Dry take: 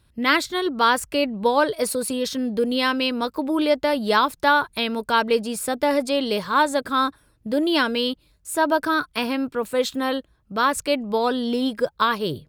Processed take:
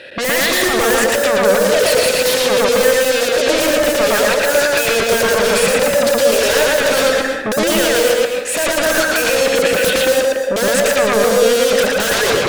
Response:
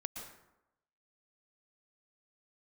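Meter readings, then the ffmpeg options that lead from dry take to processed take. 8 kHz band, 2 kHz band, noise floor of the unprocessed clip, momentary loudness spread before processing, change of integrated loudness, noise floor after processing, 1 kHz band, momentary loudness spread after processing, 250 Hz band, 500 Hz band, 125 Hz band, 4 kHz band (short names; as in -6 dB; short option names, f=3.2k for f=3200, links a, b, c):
+16.0 dB, +9.5 dB, -62 dBFS, 6 LU, +8.5 dB, -20 dBFS, +1.5 dB, 3 LU, +1.5 dB, +11.5 dB, +10.5 dB, +9.0 dB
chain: -filter_complex "[0:a]asplit=3[a][b][c];[a]bandpass=f=530:t=q:w=8,volume=0dB[d];[b]bandpass=f=1.84k:t=q:w=8,volume=-6dB[e];[c]bandpass=f=2.48k:t=q:w=8,volume=-9dB[f];[d][e][f]amix=inputs=3:normalize=0,asplit=2[g][h];[h]highpass=f=720:p=1,volume=39dB,asoftclip=type=tanh:threshold=-13dB[i];[g][i]amix=inputs=2:normalize=0,lowpass=f=4.7k:p=1,volume=-6dB,aeval=exprs='0.224*sin(PI/2*5.01*val(0)/0.224)':c=same,asplit=2[j][k];[1:a]atrim=start_sample=2205,highshelf=f=7.4k:g=-10.5,adelay=114[l];[k][l]afir=irnorm=-1:irlink=0,volume=4.5dB[m];[j][m]amix=inputs=2:normalize=0,volume=-2.5dB"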